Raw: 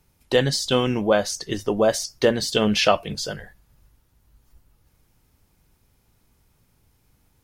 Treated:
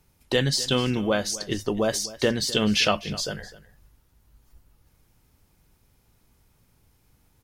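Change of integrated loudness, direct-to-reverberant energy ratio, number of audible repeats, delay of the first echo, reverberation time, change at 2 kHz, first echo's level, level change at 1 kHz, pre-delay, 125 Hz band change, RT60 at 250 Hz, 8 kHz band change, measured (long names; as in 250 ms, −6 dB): −2.5 dB, no reverb audible, 1, 255 ms, no reverb audible, −1.5 dB, −18.0 dB, −5.5 dB, no reverb audible, −0.5 dB, no reverb audible, 0.0 dB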